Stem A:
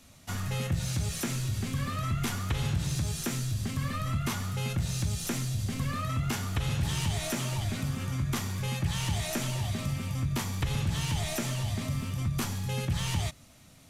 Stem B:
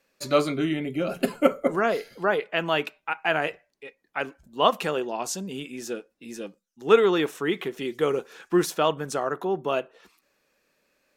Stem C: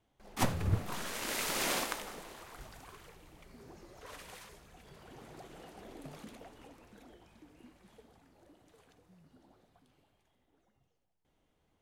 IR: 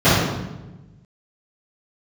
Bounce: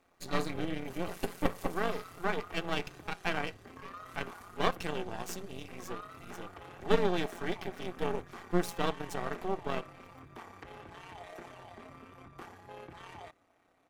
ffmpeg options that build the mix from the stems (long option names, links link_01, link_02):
-filter_complex "[0:a]acrossover=split=290 2000:gain=0.0708 1 0.0794[link_01][link_02][link_03];[link_01][link_02][link_03]amix=inputs=3:normalize=0,asoftclip=type=tanh:threshold=-36dB,volume=-0.5dB[link_04];[1:a]aeval=exprs='max(val(0),0)':channel_layout=same,volume=-4dB,asplit=2[link_05][link_06];[2:a]highshelf=frequency=8400:gain=10.5,volume=-5dB[link_07];[link_06]apad=whole_len=521075[link_08];[link_07][link_08]sidechaincompress=threshold=-36dB:ratio=8:attack=16:release=250[link_09];[link_04][link_09]amix=inputs=2:normalize=0,tremolo=f=34:d=0.4,alimiter=level_in=13dB:limit=-24dB:level=0:latency=1:release=257,volume=-13dB,volume=0dB[link_10];[link_05][link_10]amix=inputs=2:normalize=0,aecho=1:1:2.6:0.4,tremolo=f=180:d=0.71"